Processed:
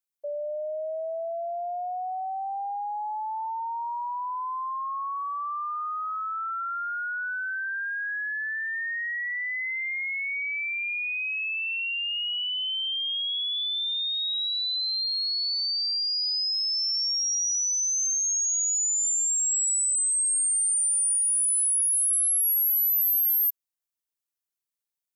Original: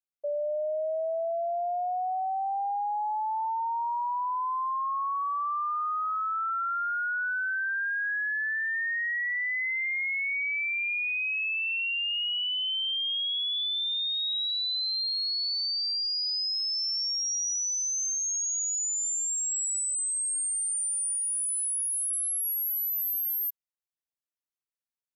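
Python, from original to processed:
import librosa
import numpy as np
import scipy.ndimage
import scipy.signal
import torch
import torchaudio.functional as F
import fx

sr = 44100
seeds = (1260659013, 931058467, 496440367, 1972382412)

y = fx.high_shelf(x, sr, hz=5100.0, db=9.5)
y = y * 10.0 ** (-2.0 / 20.0)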